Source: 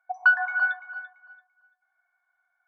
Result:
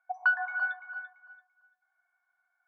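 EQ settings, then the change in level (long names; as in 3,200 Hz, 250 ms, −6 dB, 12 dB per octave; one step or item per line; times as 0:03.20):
high-pass filter 680 Hz 6 dB per octave
dynamic equaliser 1,600 Hz, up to −4 dB, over −31 dBFS, Q 0.74
high-shelf EQ 3,200 Hz −10.5 dB
0.0 dB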